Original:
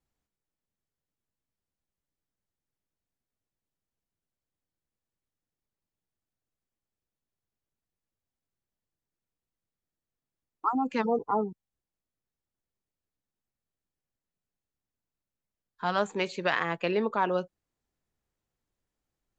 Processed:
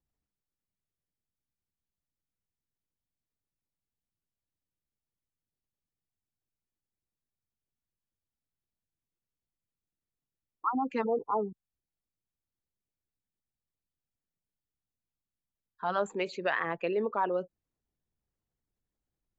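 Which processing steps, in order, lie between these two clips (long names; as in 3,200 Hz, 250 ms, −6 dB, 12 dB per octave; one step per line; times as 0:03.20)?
spectral envelope exaggerated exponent 1.5
pitch vibrato 6.1 Hz 34 cents
level −2.5 dB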